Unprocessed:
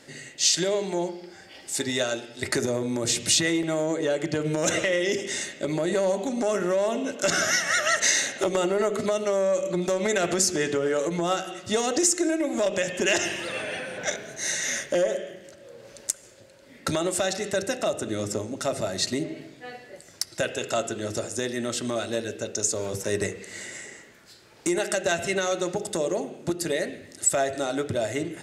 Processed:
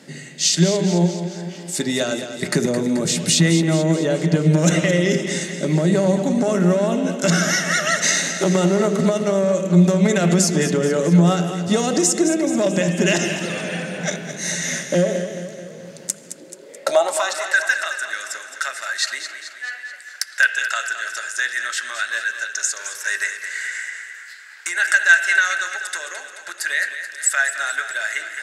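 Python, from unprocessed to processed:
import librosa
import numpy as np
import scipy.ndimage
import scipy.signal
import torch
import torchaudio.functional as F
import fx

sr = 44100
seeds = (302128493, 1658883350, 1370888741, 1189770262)

y = fx.filter_sweep_highpass(x, sr, from_hz=170.0, to_hz=1600.0, start_s=16.05, end_s=17.52, q=7.7)
y = fx.echo_feedback(y, sr, ms=216, feedback_pct=57, wet_db=-10.0)
y = y * 10.0 ** (3.0 / 20.0)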